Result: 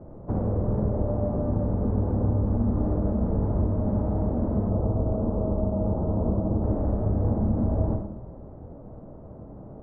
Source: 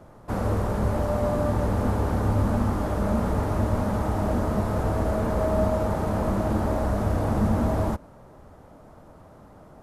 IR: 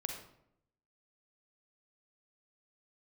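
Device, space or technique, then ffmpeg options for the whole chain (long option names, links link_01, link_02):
television next door: -filter_complex "[0:a]acompressor=threshold=-29dB:ratio=4,lowpass=530[link_01];[1:a]atrim=start_sample=2205[link_02];[link_01][link_02]afir=irnorm=-1:irlink=0,asettb=1/sr,asplit=3[link_03][link_04][link_05];[link_03]atrim=end=4.694[link_06];[link_04]atrim=start=4.69:end=6.64,asetpts=PTS-STARTPTS,afade=type=in:duration=0.004:curve=qsin,afade=type=out:start_time=1.946:duration=0.004:curve=qsin,lowpass=frequency=1300:width=0.5412,lowpass=frequency=1300:width=1.3066[link_07];[link_05]atrim=start=6.636[link_08];[link_06][link_07]acrossfade=duration=0.004:curve1=hsin:curve2=qsin[link_09];[link_09][link_08]acrossfade=duration=0.004:curve1=qsin:curve2=hsin,volume=7dB"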